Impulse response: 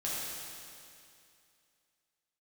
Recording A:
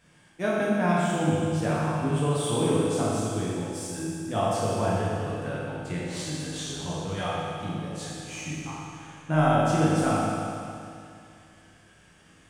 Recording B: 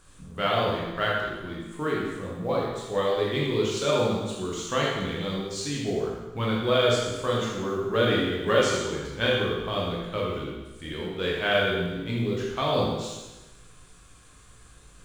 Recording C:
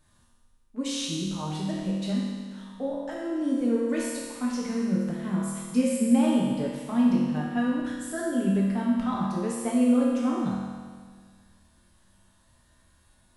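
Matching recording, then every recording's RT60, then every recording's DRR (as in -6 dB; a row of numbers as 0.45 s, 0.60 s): A; 2.5 s, 1.1 s, 1.7 s; -7.5 dB, -4.5 dB, -5.5 dB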